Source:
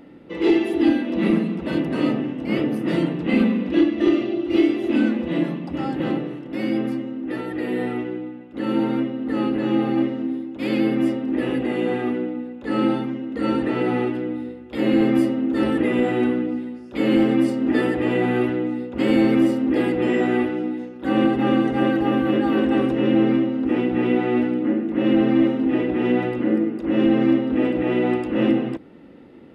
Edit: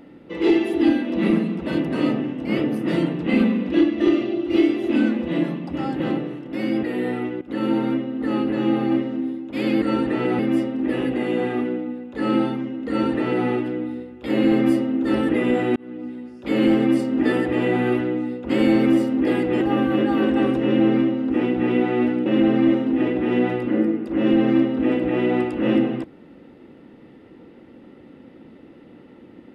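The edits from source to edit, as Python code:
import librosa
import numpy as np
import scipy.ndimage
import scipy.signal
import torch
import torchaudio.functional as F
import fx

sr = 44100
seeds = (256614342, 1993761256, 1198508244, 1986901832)

y = fx.edit(x, sr, fx.cut(start_s=6.83, length_s=0.74),
    fx.cut(start_s=8.15, length_s=0.32),
    fx.duplicate(start_s=13.38, length_s=0.57, to_s=10.88),
    fx.fade_in_span(start_s=16.25, length_s=0.89, curve='qsin'),
    fx.cut(start_s=20.1, length_s=1.86),
    fx.cut(start_s=24.61, length_s=0.38), tone=tone)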